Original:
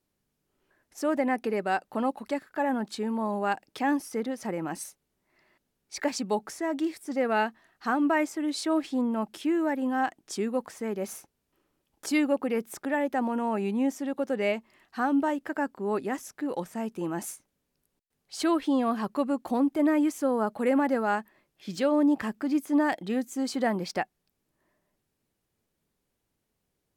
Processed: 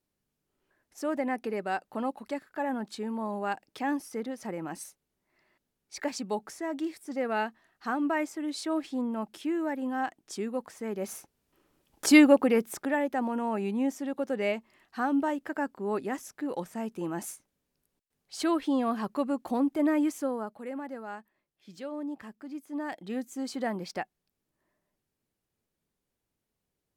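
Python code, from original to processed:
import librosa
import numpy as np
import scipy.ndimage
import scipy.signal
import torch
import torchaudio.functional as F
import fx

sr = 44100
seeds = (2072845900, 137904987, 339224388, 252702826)

y = fx.gain(x, sr, db=fx.line((10.74, -4.0), (12.14, 8.5), (13.11, -2.0), (20.17, -2.0), (20.62, -13.5), (22.65, -13.5), (23.16, -5.0)))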